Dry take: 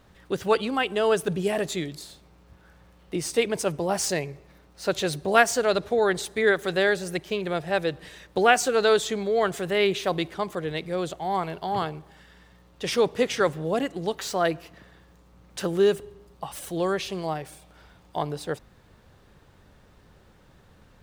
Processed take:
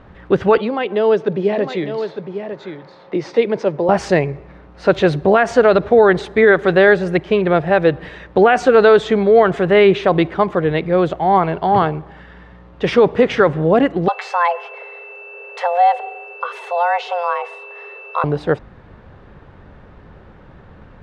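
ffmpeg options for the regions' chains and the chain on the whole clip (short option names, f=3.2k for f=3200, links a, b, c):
-filter_complex "[0:a]asettb=1/sr,asplit=3[a][b][c];[a]atrim=end=0.584[d];[b]atrim=start=0.58:end=3.89,asetpts=PTS-STARTPTS,afade=t=in:d=0.004:c=qsin,afade=t=out:st=3.306:d=0.004:c=qsin,acrossover=split=400|3000[e][f][g];[f]acompressor=threshold=-49dB:ratio=2:attack=3.2:release=140:knee=2.83:detection=peak[h];[e][h][g]amix=inputs=3:normalize=0,highpass=f=150:w=0.5412,highpass=f=150:w=1.3066,equalizer=f=170:t=q:w=4:g=-9,equalizer=f=270:t=q:w=4:g=-8,equalizer=f=550:t=q:w=4:g=6,equalizer=f=920:t=q:w=4:g=6,equalizer=f=2k:t=q:w=4:g=3,equalizer=f=2.9k:t=q:w=4:g=-4,lowpass=f=5.7k:w=0.5412,lowpass=f=5.7k:w=1.3066,aecho=1:1:904:0.355,atrim=end_sample=145971[i];[c]atrim=start=3.886[j];[d][i]acrossfade=d=0.004:c1=hsin:c2=qsin[k];[k][j]acrossfade=d=0.004:c1=qsin:c2=hsin,asettb=1/sr,asplit=3[l][m][n];[l]atrim=end=14.084[o];[m]atrim=start=14.08:end=18.24,asetpts=PTS-STARTPTS,afade=t=in:d=0.004:c=qsin,afade=t=out:st=4.156:d=0.004:c=qsin,acompressor=threshold=-33dB:ratio=1.5:attack=3.2:release=140:knee=1:detection=peak,aeval=exprs='val(0)+0.00794*sin(2*PI*2300*n/s)':c=same,afreqshift=350[p];[n]atrim=start=18.236[q];[o][p]acrossfade=d=0.004:c1=hsin:c2=qsin[r];[r][q]acrossfade=d=0.004:c1=qsin:c2=hsin,lowpass=2k,alimiter=level_in=14.5dB:limit=-1dB:release=50:level=0:latency=1,volume=-1dB"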